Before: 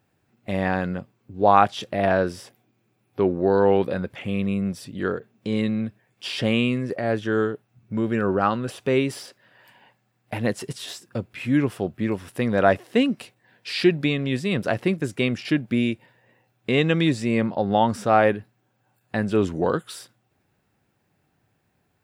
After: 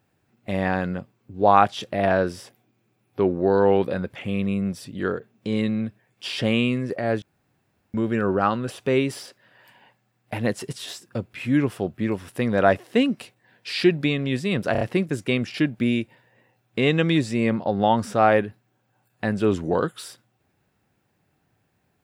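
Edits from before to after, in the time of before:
0:07.22–0:07.94: fill with room tone
0:14.72: stutter 0.03 s, 4 plays

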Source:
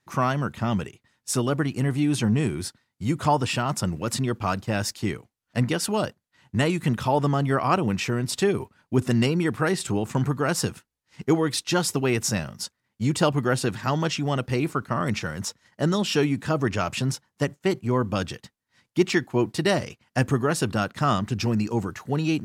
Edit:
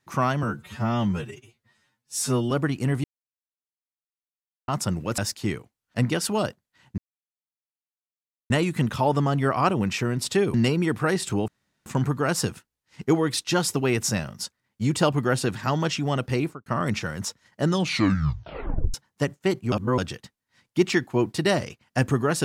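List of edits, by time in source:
0:00.43–0:01.47: time-stretch 2×
0:02.00–0:03.64: silence
0:04.14–0:04.77: remove
0:06.57: splice in silence 1.52 s
0:08.61–0:09.12: remove
0:10.06: splice in room tone 0.38 s
0:14.58–0:14.86: fade out and dull
0:15.88: tape stop 1.26 s
0:17.92–0:18.18: reverse

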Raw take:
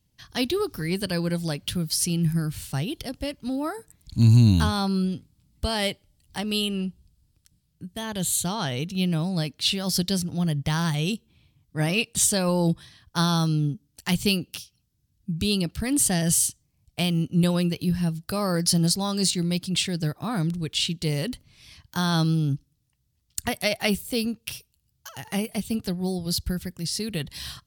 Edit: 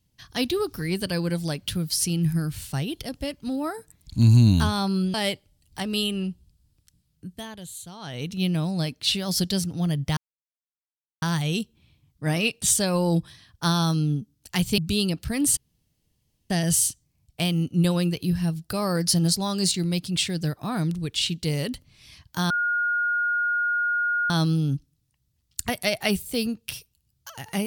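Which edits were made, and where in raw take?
0:05.14–0:05.72: remove
0:07.89–0:08.88: duck −14.5 dB, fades 0.43 s quadratic
0:10.75: splice in silence 1.05 s
0:14.31–0:15.30: remove
0:16.09: splice in room tone 0.93 s
0:22.09: insert tone 1,430 Hz −21 dBFS 1.80 s

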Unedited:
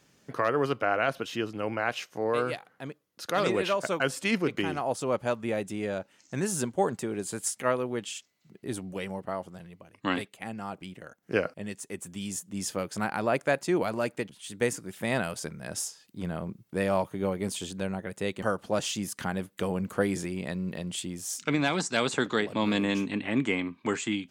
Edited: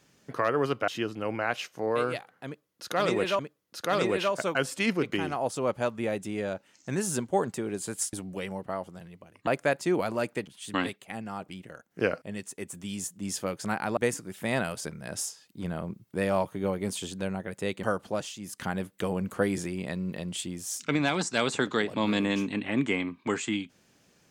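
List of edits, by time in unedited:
0:00.88–0:01.26: remove
0:02.84–0:03.77: repeat, 2 plays
0:07.58–0:08.72: remove
0:13.29–0:14.56: move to 0:10.06
0:18.62–0:19.27: duck −9.5 dB, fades 0.29 s

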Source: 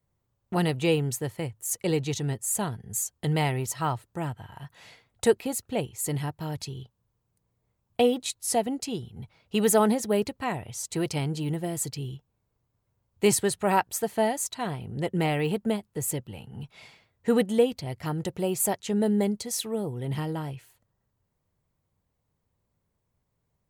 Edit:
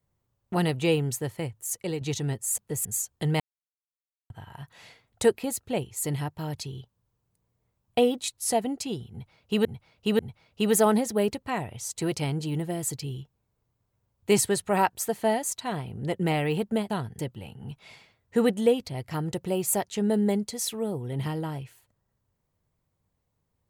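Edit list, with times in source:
0:01.56–0:02.01: fade out, to −7.5 dB
0:02.58–0:02.87: swap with 0:15.84–0:16.11
0:03.42–0:04.32: silence
0:09.13–0:09.67: repeat, 3 plays

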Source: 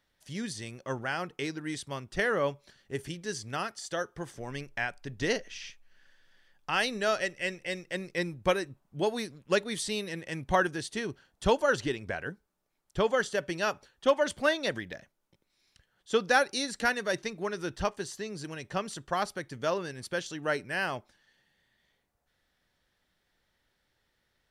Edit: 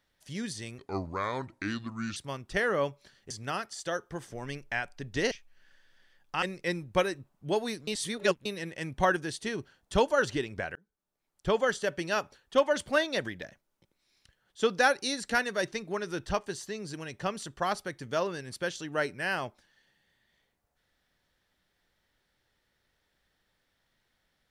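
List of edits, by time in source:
0:00.78–0:01.79: play speed 73%
0:02.93–0:03.36: remove
0:05.37–0:05.66: remove
0:06.77–0:07.93: remove
0:09.38–0:09.96: reverse
0:12.26–0:13.00: fade in

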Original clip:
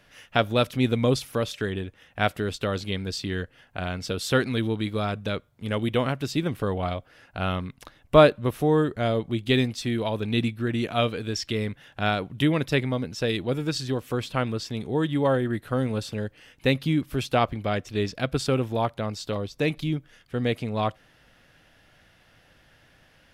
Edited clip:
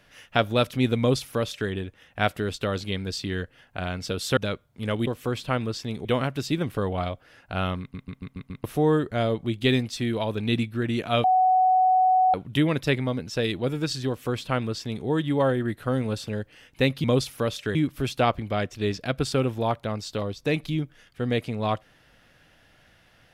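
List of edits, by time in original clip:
0:00.99–0:01.70: duplicate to 0:16.89
0:04.37–0:05.20: remove
0:07.65: stutter in place 0.14 s, 6 plays
0:11.09–0:12.19: beep over 745 Hz −16 dBFS
0:13.93–0:14.91: duplicate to 0:05.90

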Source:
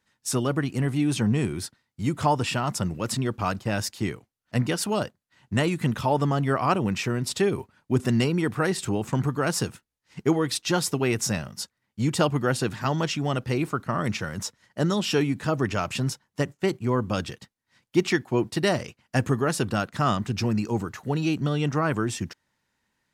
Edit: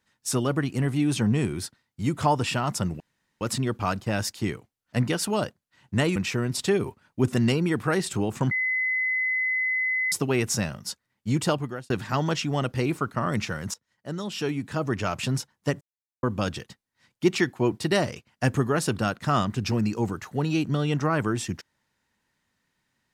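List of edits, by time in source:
0:03.00: splice in room tone 0.41 s
0:05.75–0:06.88: remove
0:09.23–0:10.84: beep over 2,030 Hz −22.5 dBFS
0:12.11–0:12.62: fade out
0:14.46–0:15.97: fade in, from −18.5 dB
0:16.53–0:16.95: silence

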